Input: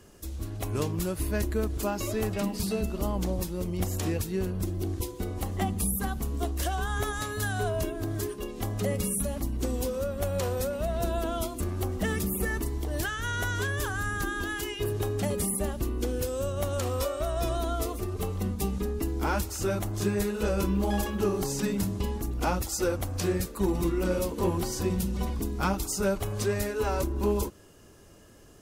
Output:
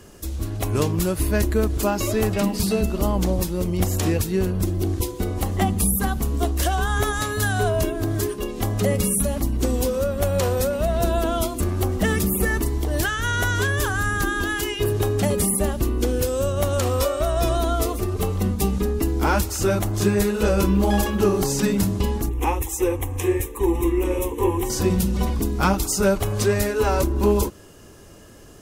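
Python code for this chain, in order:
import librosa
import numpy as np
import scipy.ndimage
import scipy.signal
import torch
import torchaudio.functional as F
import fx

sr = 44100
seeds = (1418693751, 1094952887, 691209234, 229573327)

y = fx.fixed_phaser(x, sr, hz=940.0, stages=8, at=(22.29, 24.7))
y = y * 10.0 ** (8.0 / 20.0)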